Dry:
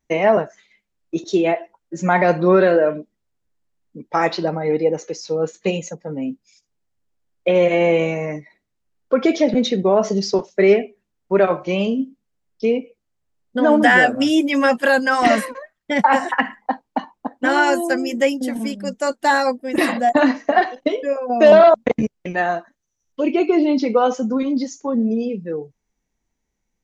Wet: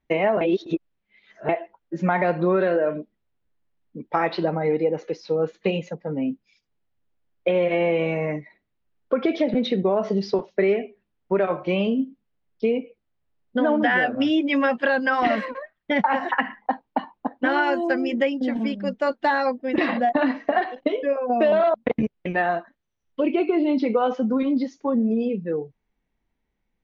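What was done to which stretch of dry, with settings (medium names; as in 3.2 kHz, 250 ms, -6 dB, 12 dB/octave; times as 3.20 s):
0.41–1.49 s: reverse
whole clip: low-pass 3.8 kHz 24 dB/octave; compression 4:1, threshold -18 dBFS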